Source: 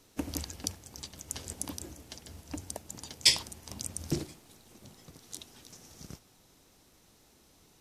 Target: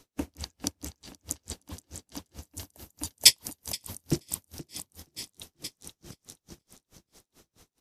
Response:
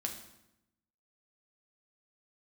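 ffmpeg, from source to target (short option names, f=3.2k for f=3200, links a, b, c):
-filter_complex "[0:a]asettb=1/sr,asplit=3[a][b][c];[a]atrim=end=2.424[d];[b]atrim=start=2.42:end=4.07,asetpts=PTS-STARTPTS,afade=t=in:d=0.004:c=qsin,afade=t=out:st=1.646:d=0.004:c=qsin,equalizer=f=13k:t=o:w=0.82:g=15[e];[c]atrim=start=4.066[f];[d][e]acrossfade=d=0.004:c1=hsin:c2=qsin[g];[g][f]acrossfade=d=0.004:c1=qsin:c2=hsin,aecho=1:1:477|954|1431|1908|2385|2862|3339|3816:0.596|0.334|0.187|0.105|0.0586|0.0328|0.0184|0.0103,aeval=exprs='val(0)*pow(10,-39*(0.5-0.5*cos(2*PI*4.6*n/s))/20)':c=same,volume=4.5dB"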